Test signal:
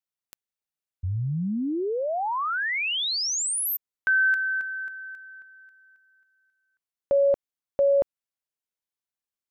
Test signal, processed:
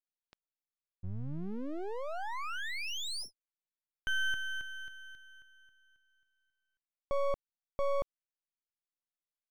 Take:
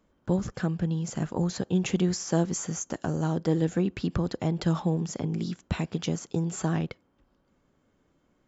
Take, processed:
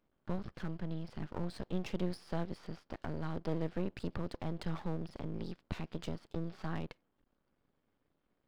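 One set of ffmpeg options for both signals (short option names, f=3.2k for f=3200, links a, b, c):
-af "aresample=11025,aresample=44100,aeval=exprs='max(val(0),0)':c=same,volume=-7dB"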